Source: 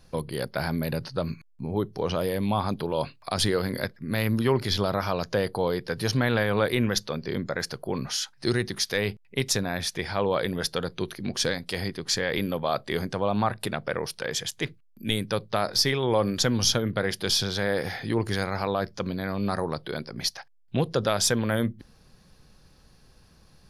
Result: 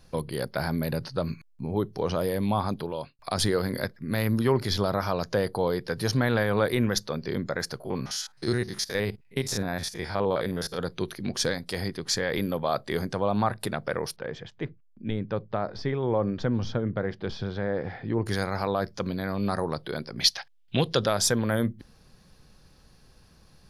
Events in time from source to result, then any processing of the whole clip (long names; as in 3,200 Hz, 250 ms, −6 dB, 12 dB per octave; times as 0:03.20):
0:02.50–0:03.19: fade out equal-power
0:07.80–0:10.79: spectrum averaged block by block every 50 ms
0:14.16–0:18.26: head-to-tape spacing loss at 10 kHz 42 dB
0:20.20–0:21.06: parametric band 3,100 Hz +14.5 dB 1.3 octaves
whole clip: dynamic equaliser 2,800 Hz, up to −6 dB, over −45 dBFS, Q 1.8